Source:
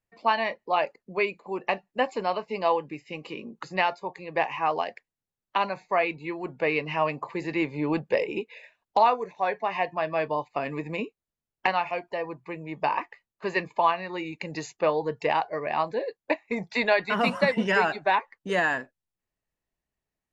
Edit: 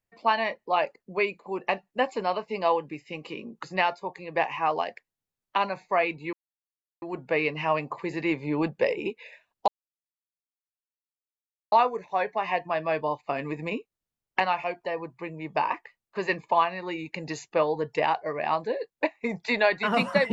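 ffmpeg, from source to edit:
-filter_complex "[0:a]asplit=3[s0][s1][s2];[s0]atrim=end=6.33,asetpts=PTS-STARTPTS,afade=t=out:st=6.326:d=0.004:c=hsin,apad=pad_dur=0.69[s3];[s1]atrim=start=6.33:end=8.99,asetpts=PTS-STARTPTS,afade=t=in:d=0.004:c=hsin,afade=t=out:st=2.656:d=0.004:c=hsin,apad=pad_dur=2.04[s4];[s2]atrim=start=8.99,asetpts=PTS-STARTPTS,afade=t=in:d=0.004:c=hsin[s5];[s3][s4][s5]concat=n=3:v=0:a=1"

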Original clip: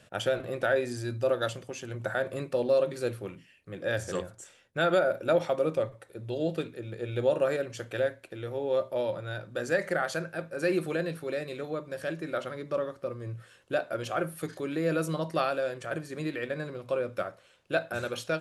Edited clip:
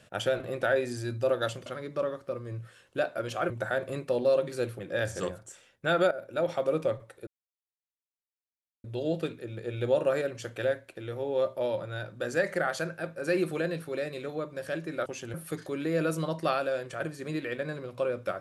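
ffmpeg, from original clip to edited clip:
-filter_complex "[0:a]asplit=8[s0][s1][s2][s3][s4][s5][s6][s7];[s0]atrim=end=1.662[s8];[s1]atrim=start=12.408:end=14.252[s9];[s2]atrim=start=1.938:end=3.232[s10];[s3]atrim=start=3.708:end=5.03,asetpts=PTS-STARTPTS,afade=t=out:st=1.318:d=0.004:c=hsin:silence=0.199526[s11];[s4]atrim=start=5.03:end=6.19,asetpts=PTS-STARTPTS,afade=t=in:d=0.58:silence=0.199526,afade=t=out:st=1.156:d=0.004:c=hsin,apad=pad_dur=1.57[s12];[s5]atrim=start=6.19:end=12.412,asetpts=PTS-STARTPTS,afade=t=in:d=0.004:c=hsin[s13];[s6]atrim=start=1.658:end=1.942[s14];[s7]atrim=start=14.248[s15];[s8][s9]acrossfade=d=0.004:c1=hsin:c2=hsin[s16];[s16][s10]acrossfade=d=0.004:c1=hsin:c2=hsin[s17];[s11][s12][s13]concat=n=3:v=0:a=1[s18];[s17][s18]acrossfade=d=0.004:c1=hsin:c2=hsin[s19];[s19][s14]acrossfade=d=0.004:c1=hsin:c2=hsin[s20];[s20][s15]acrossfade=d=0.004:c1=hsin:c2=hsin"

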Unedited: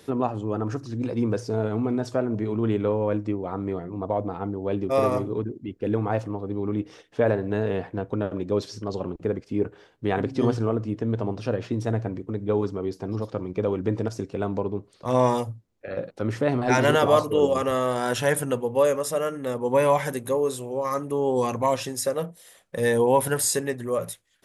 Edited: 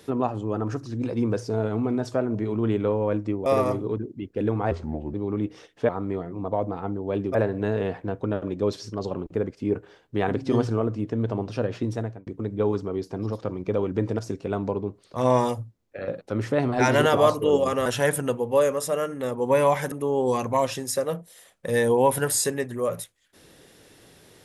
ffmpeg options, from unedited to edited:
-filter_complex "[0:a]asplit=9[s0][s1][s2][s3][s4][s5][s6][s7][s8];[s0]atrim=end=3.462[s9];[s1]atrim=start=4.918:end=6.174[s10];[s2]atrim=start=6.17:end=6.49,asetpts=PTS-STARTPTS,asetrate=33075,aresample=44100[s11];[s3]atrim=start=6.486:end=7.242[s12];[s4]atrim=start=3.458:end=4.922[s13];[s5]atrim=start=7.238:end=12.16,asetpts=PTS-STARTPTS,afade=t=out:st=4.532:d=0.39[s14];[s6]atrim=start=12.16:end=17.752,asetpts=PTS-STARTPTS,afade=t=in:d=0.004:c=hsin[s15];[s7]atrim=start=18.088:end=20.152[s16];[s8]atrim=start=21.008[s17];[s9][s10]acrossfade=d=0.004:c1=hsin:c2=hsin[s18];[s18][s11]acrossfade=d=0.004:c1=hsin:c2=hsin[s19];[s19][s12]acrossfade=d=0.004:c1=hsin:c2=hsin[s20];[s20][s13]acrossfade=d=0.004:c1=hsin:c2=hsin[s21];[s14][s15]concat=n=2:v=0:a=1[s22];[s21][s22]acrossfade=d=0.004:c1=hsin:c2=hsin[s23];[s23][s16]acrossfade=d=0.004:c1=hsin:c2=hsin[s24];[s24][s17]acrossfade=d=0.004:c1=hsin:c2=hsin"

